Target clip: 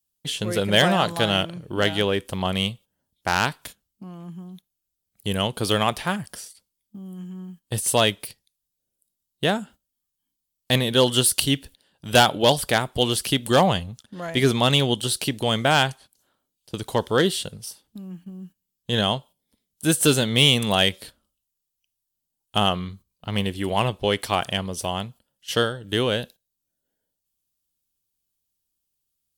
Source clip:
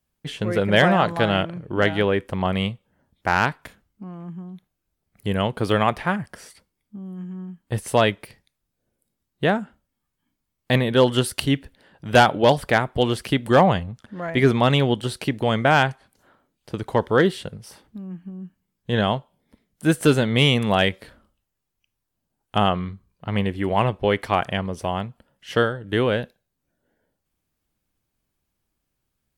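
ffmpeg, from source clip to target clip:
ffmpeg -i in.wav -af "agate=range=-11dB:threshold=-42dB:ratio=16:detection=peak,aexciter=amount=1.9:drive=9.8:freq=2900,volume=-2.5dB" out.wav

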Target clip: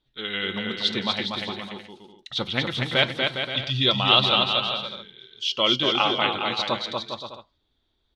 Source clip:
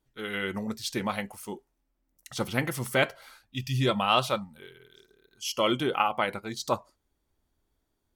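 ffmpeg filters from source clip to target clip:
ffmpeg -i in.wav -filter_complex "[0:a]lowpass=frequency=3700:width_type=q:width=7.1,asplit=2[link_01][link_02];[link_02]aecho=0:1:240|408|525.6|607.9|665.5:0.631|0.398|0.251|0.158|0.1[link_03];[link_01][link_03]amix=inputs=2:normalize=0" out.wav

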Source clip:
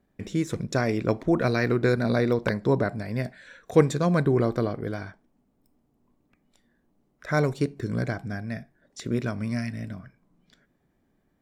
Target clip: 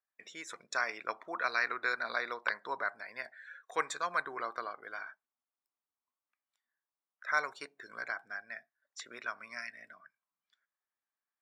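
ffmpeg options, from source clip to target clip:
ffmpeg -i in.wav -af "afftdn=noise_reduction=15:noise_floor=-48,highpass=frequency=1200:width_type=q:width=1.8,volume=-4.5dB" out.wav

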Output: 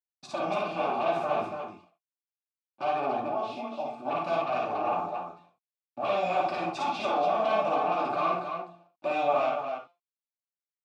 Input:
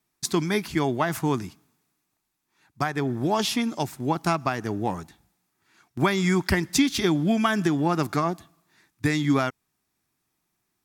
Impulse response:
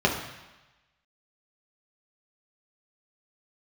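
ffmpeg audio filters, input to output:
-filter_complex "[0:a]bandreject=frequency=173.3:width_type=h:width=4,bandreject=frequency=346.6:width_type=h:width=4,bandreject=frequency=519.9:width_type=h:width=4,bandreject=frequency=693.2:width_type=h:width=4,bandreject=frequency=866.5:width_type=h:width=4,bandreject=frequency=1039.8:width_type=h:width=4,bandreject=frequency=1213.1:width_type=h:width=4,bandreject=frequency=1386.4:width_type=h:width=4,bandreject=frequency=1559.7:width_type=h:width=4,bandreject=frequency=1733:width_type=h:width=4,bandreject=frequency=1906.3:width_type=h:width=4,bandreject=frequency=2079.6:width_type=h:width=4,bandreject=frequency=2252.9:width_type=h:width=4,bandreject=frequency=2426.2:width_type=h:width=4,bandreject=frequency=2599.5:width_type=h:width=4,bandreject=frequency=2772.8:width_type=h:width=4,bandreject=frequency=2946.1:width_type=h:width=4,bandreject=frequency=3119.4:width_type=h:width=4,bandreject=frequency=3292.7:width_type=h:width=4,bandreject=frequency=3466:width_type=h:width=4,bandreject=frequency=3639.3:width_type=h:width=4,bandreject=frequency=3812.6:width_type=h:width=4,bandreject=frequency=3985.9:width_type=h:width=4,bandreject=frequency=4159.2:width_type=h:width=4,bandreject=frequency=4332.5:width_type=h:width=4,bandreject=frequency=4505.8:width_type=h:width=4,bandreject=frequency=4679.1:width_type=h:width=4,bandreject=frequency=4852.4:width_type=h:width=4,bandreject=frequency=5025.7:width_type=h:width=4,agate=range=-10dB:threshold=-54dB:ratio=16:detection=peak,asplit=2[link_01][link_02];[link_02]alimiter=limit=-19.5dB:level=0:latency=1,volume=-2dB[link_03];[link_01][link_03]amix=inputs=2:normalize=0,asettb=1/sr,asplit=3[link_04][link_05][link_06];[link_04]atrim=end=3.224[link_07];[link_05]atrim=start=3.22:end=4.05,asetpts=PTS-STARTPTS,afade=type=in:duration=0.004:curve=qsin,afade=type=out:start_time=0.826:duration=0.004:curve=qsin,acompressor=threshold=-31dB:ratio=4[link_08];[link_06]atrim=start=4.046[link_09];[link_07][link_08]acrossfade=duration=0.004:curve1=hsin:curve2=qsin[link_10];[link_10][link_09]acrossfade=duration=0.004:curve1=qsin:curve2=hsin,acrossover=split=2500[link_11][link_12];[link_11]aeval=exprs='0.0841*(abs(mod(val(0)/0.0841+3,4)-2)-1)':channel_layout=same[link_13];[link_13][link_12]amix=inputs=2:normalize=0,acrusher=bits=7:mix=0:aa=0.000001,asplit=3[link_14][link_15][link_16];[link_14]bandpass=frequency=730:width_type=q:width=8,volume=0dB[link_17];[link_15]bandpass=frequency=1090:width_type=q:width=8,volume=-6dB[link_18];[link_16]bandpass=frequency=2440:width_type=q:width=8,volume=-9dB[link_19];[link_17][link_18][link_19]amix=inputs=3:normalize=0,aecho=1:1:55.39|282.8:0.891|0.562[link_20];[1:a]atrim=start_sample=2205,atrim=end_sample=6174,asetrate=66150,aresample=44100[link_21];[link_20][link_21]afir=irnorm=-1:irlink=0,volume=-6dB"

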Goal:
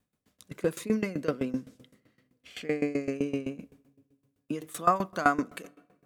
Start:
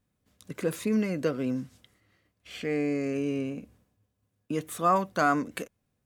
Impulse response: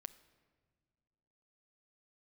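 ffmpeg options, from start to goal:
-filter_complex "[0:a]asplit=2[link_01][link_02];[link_02]highpass=120[link_03];[1:a]atrim=start_sample=2205[link_04];[link_03][link_04]afir=irnorm=-1:irlink=0,volume=3dB[link_05];[link_01][link_05]amix=inputs=2:normalize=0,aeval=exprs='val(0)*pow(10,-19*if(lt(mod(7.8*n/s,1),2*abs(7.8)/1000),1-mod(7.8*n/s,1)/(2*abs(7.8)/1000),(mod(7.8*n/s,1)-2*abs(7.8)/1000)/(1-2*abs(7.8)/1000))/20)':channel_layout=same"

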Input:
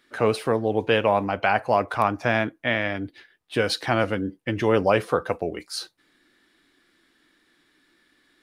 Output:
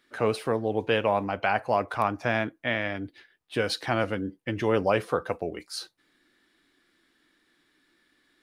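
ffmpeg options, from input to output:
ffmpeg -i in.wav -af "volume=-4dB" out.wav

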